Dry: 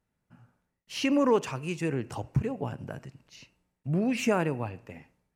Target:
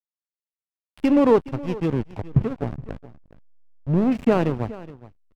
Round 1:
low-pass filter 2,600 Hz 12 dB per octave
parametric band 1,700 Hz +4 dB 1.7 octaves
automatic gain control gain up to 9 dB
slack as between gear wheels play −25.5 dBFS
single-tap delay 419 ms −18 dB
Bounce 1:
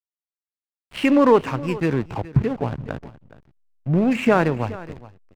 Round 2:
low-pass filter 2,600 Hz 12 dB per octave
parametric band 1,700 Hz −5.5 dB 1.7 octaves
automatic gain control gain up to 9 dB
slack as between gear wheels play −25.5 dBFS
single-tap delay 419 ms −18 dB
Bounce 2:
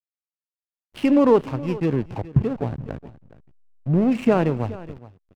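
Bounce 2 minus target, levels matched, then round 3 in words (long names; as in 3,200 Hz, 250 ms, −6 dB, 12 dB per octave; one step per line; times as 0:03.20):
slack as between gear wheels: distortion −6 dB
low-pass filter 2,600 Hz 12 dB per octave
parametric band 1,700 Hz −5.5 dB 1.7 octaves
automatic gain control gain up to 9 dB
slack as between gear wheels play −19 dBFS
single-tap delay 419 ms −18 dB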